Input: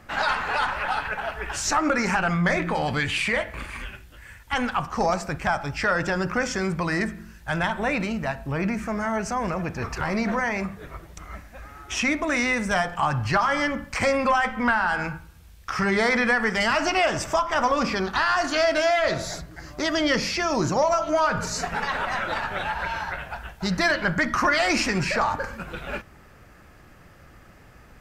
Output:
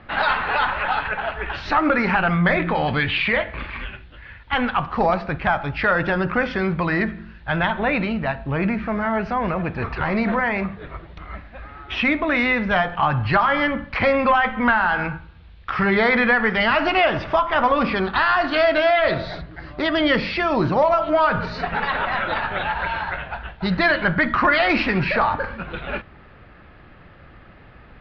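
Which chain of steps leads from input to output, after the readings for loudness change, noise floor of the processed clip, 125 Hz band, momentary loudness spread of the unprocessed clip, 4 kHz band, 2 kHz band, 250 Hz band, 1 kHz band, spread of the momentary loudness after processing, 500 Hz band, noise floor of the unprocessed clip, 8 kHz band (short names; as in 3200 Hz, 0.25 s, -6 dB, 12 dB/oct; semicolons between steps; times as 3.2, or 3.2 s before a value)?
+4.0 dB, -46 dBFS, +4.0 dB, 12 LU, +1.5 dB, +4.0 dB, +4.0 dB, +4.0 dB, 13 LU, +4.0 dB, -50 dBFS, under -25 dB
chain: steep low-pass 4100 Hz 48 dB/oct; gain +4 dB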